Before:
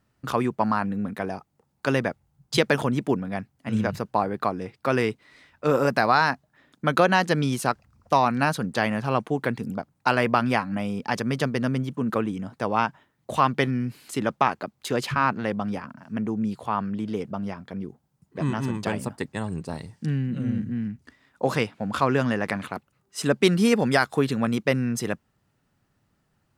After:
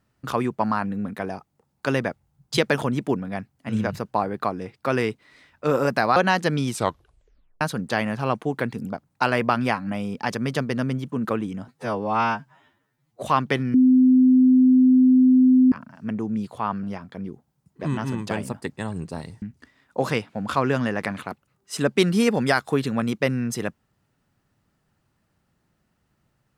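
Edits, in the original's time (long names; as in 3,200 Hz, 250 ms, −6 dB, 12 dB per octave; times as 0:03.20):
0:06.16–0:07.01: remove
0:07.52: tape stop 0.94 s
0:12.53–0:13.30: time-stretch 2×
0:13.82–0:15.80: beep over 256 Hz −11.5 dBFS
0:16.91–0:17.39: remove
0:19.98–0:20.87: remove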